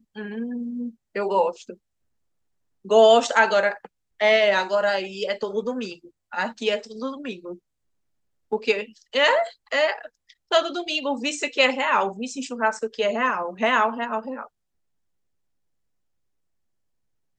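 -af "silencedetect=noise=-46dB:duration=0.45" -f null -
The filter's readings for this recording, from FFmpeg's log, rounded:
silence_start: 1.74
silence_end: 2.85 | silence_duration: 1.10
silence_start: 7.57
silence_end: 8.52 | silence_duration: 0.94
silence_start: 14.47
silence_end: 17.38 | silence_duration: 2.91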